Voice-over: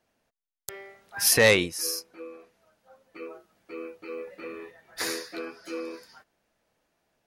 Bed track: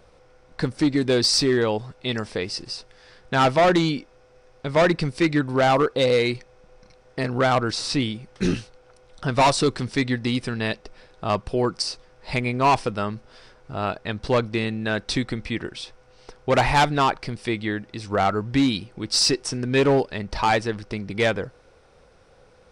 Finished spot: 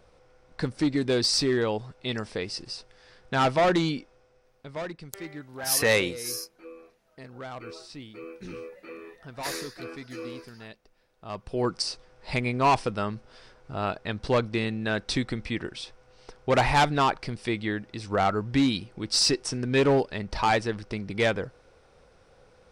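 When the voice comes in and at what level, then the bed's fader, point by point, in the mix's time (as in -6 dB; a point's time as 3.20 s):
4.45 s, -3.5 dB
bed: 4.05 s -4.5 dB
5.01 s -19.5 dB
11.13 s -19.5 dB
11.67 s -3 dB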